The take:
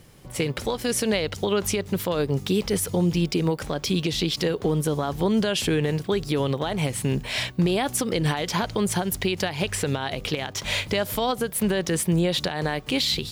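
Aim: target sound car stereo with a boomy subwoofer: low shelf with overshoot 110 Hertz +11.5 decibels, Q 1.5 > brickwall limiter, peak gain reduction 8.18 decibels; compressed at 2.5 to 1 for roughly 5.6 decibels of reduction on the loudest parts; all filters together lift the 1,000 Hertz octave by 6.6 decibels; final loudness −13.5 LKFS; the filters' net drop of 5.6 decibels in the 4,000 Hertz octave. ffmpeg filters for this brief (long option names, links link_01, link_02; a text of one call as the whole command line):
ffmpeg -i in.wav -af "equalizer=frequency=1000:width_type=o:gain=9,equalizer=frequency=4000:width_type=o:gain=-8,acompressor=threshold=-24dB:ratio=2.5,lowshelf=frequency=110:width_type=q:width=1.5:gain=11.5,volume=17dB,alimiter=limit=-3.5dB:level=0:latency=1" out.wav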